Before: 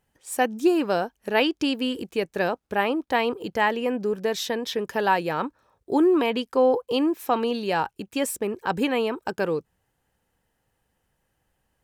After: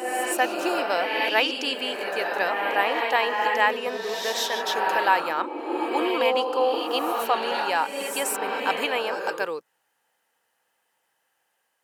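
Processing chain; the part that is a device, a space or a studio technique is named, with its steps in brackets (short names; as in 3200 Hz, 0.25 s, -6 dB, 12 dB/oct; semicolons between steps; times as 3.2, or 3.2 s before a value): ghost voice (reverse; reverb RT60 2.3 s, pre-delay 0.104 s, DRR 1 dB; reverse; HPF 760 Hz 12 dB/oct); low shelf 240 Hz +5.5 dB; gain +2.5 dB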